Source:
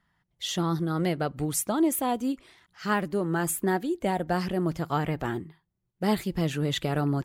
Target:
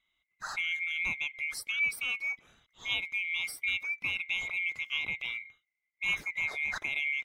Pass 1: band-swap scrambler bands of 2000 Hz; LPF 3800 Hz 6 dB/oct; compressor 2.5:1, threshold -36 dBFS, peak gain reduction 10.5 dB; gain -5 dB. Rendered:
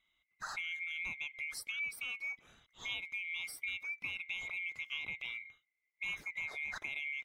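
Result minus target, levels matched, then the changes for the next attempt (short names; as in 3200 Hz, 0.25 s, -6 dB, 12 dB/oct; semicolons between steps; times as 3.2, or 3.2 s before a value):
compressor: peak gain reduction +10.5 dB
remove: compressor 2.5:1, threshold -36 dBFS, peak gain reduction 10.5 dB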